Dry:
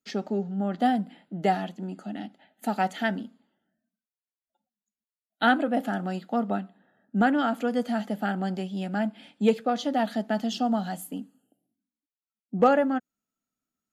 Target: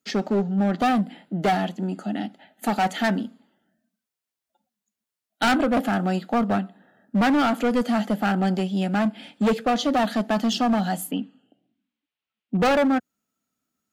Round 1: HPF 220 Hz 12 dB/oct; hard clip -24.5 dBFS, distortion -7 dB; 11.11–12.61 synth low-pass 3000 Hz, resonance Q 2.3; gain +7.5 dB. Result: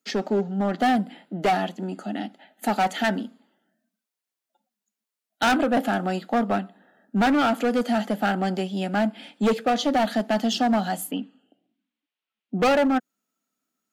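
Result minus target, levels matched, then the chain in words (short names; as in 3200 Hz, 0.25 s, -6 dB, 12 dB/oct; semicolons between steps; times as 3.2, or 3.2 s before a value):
125 Hz band -3.0 dB
HPF 60 Hz 12 dB/oct; hard clip -24.5 dBFS, distortion -7 dB; 11.11–12.61 synth low-pass 3000 Hz, resonance Q 2.3; gain +7.5 dB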